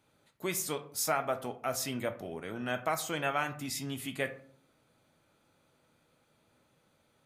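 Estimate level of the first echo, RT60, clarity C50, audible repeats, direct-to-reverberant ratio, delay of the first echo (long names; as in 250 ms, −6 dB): no echo audible, 0.50 s, 14.0 dB, no echo audible, 8.5 dB, no echo audible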